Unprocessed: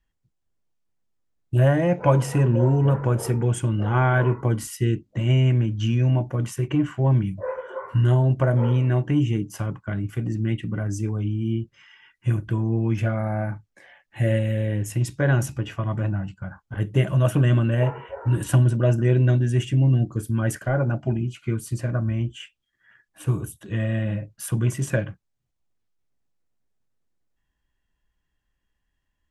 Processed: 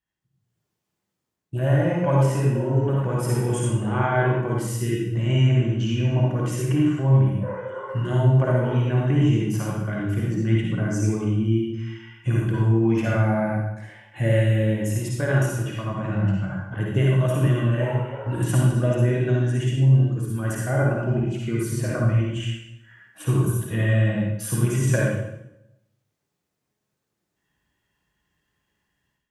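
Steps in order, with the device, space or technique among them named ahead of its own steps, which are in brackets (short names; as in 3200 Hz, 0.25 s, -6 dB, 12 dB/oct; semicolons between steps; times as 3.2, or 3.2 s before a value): far laptop microphone (reverb RT60 0.80 s, pre-delay 48 ms, DRR -3 dB; HPF 100 Hz; AGC); gain -8 dB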